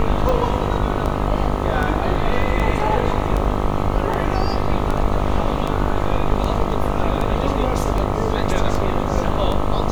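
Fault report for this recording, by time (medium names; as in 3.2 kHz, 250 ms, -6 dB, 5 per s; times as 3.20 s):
buzz 50 Hz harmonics 26 -23 dBFS
tick 78 rpm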